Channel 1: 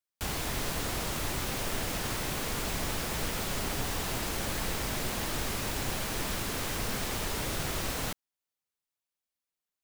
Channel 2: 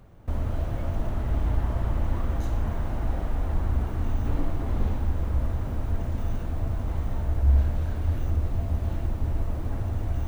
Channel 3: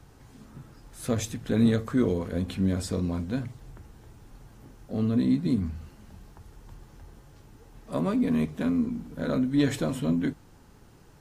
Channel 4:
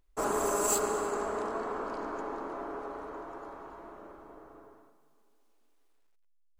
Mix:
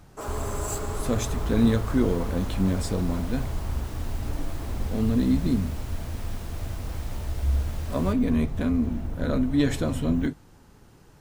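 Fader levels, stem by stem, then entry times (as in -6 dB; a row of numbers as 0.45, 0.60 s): -12.0, -4.5, +1.0, -5.0 dB; 0.00, 0.00, 0.00, 0.00 s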